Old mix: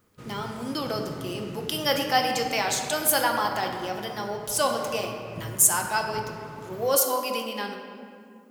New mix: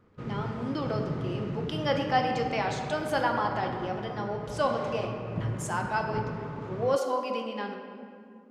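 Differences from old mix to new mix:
background +6.0 dB; master: add tape spacing loss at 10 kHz 27 dB

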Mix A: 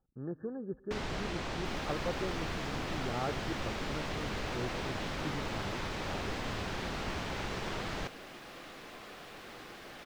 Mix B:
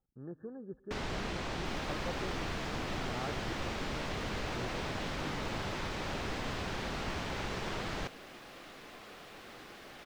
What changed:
speech -5.5 dB; second sound: send -10.0 dB

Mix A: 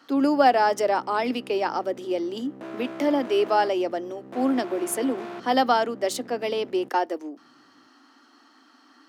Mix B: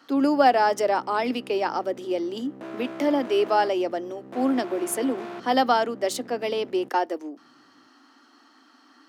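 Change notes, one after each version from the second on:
none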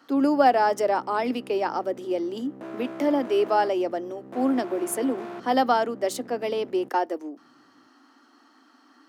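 master: add bell 3700 Hz -4.5 dB 2.1 oct

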